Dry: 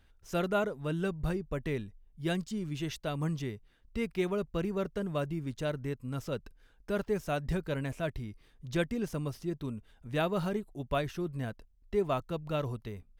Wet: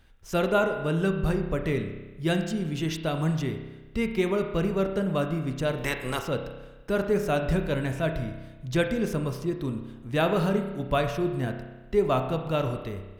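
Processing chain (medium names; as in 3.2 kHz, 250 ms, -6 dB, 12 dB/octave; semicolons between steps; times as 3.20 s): 5.77–6.18 s: spectral peaks clipped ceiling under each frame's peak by 24 dB; spring tank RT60 1.2 s, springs 31 ms, chirp 35 ms, DRR 5.5 dB; trim +6 dB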